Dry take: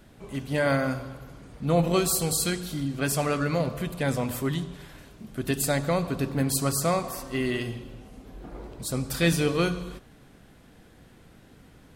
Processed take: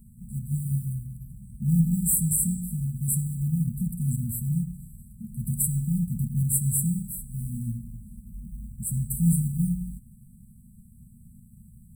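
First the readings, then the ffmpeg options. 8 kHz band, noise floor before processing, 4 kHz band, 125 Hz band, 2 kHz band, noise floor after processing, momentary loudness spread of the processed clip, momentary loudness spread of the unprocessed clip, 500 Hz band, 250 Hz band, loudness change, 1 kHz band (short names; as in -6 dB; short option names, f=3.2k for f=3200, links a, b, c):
+3.0 dB, -54 dBFS, under -40 dB, +4.5 dB, under -40 dB, -52 dBFS, 20 LU, 19 LU, under -40 dB, 0.0 dB, 0.0 dB, under -40 dB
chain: -af "acrusher=bits=6:mode=log:mix=0:aa=0.000001,afftfilt=real='re*(1-between(b*sr/4096,240,7600))':imag='im*(1-between(b*sr/4096,240,7600))':win_size=4096:overlap=0.75,volume=4.5dB"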